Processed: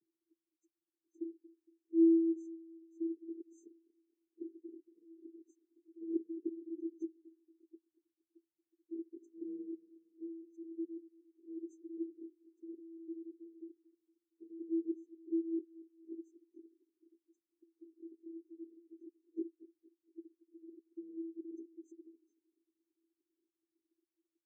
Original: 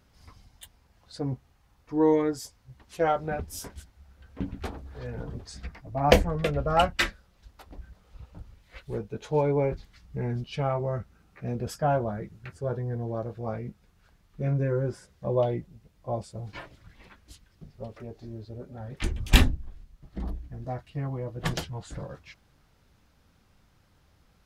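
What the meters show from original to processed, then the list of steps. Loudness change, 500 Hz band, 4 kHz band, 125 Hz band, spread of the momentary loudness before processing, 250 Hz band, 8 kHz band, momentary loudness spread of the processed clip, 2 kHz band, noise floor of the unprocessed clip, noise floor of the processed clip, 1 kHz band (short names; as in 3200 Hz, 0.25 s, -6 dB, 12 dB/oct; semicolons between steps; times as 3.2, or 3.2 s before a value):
-10.5 dB, -15.5 dB, under -40 dB, under -40 dB, 20 LU, -4.0 dB, under -30 dB, 19 LU, under -40 dB, -64 dBFS, under -85 dBFS, under -40 dB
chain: minimum comb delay 0.73 ms; spectral gate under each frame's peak -15 dB strong; vocoder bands 16, square 330 Hz; three-band isolator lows -15 dB, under 470 Hz, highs -22 dB, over 4400 Hz; on a send: dark delay 0.231 s, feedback 40%, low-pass 590 Hz, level -18 dB; on the sum: FFT band-reject 470–5800 Hz; gain +3.5 dB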